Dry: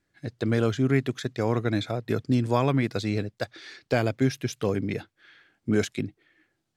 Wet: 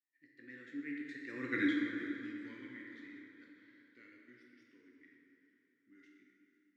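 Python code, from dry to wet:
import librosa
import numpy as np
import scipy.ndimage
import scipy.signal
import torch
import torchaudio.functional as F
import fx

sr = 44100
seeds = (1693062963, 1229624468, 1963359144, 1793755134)

p1 = fx.doppler_pass(x, sr, speed_mps=28, closest_m=2.6, pass_at_s=1.56)
p2 = fx.double_bandpass(p1, sr, hz=740.0, octaves=2.7)
p3 = fx.tilt_eq(p2, sr, slope=3.0)
p4 = fx.notch(p3, sr, hz=660.0, q=12.0)
p5 = p4 + fx.echo_diffused(p4, sr, ms=476, feedback_pct=50, wet_db=-15.5, dry=0)
p6 = fx.rev_plate(p5, sr, seeds[0], rt60_s=2.3, hf_ratio=0.6, predelay_ms=0, drr_db=-2.5)
y = F.gain(torch.from_numpy(p6), 4.0).numpy()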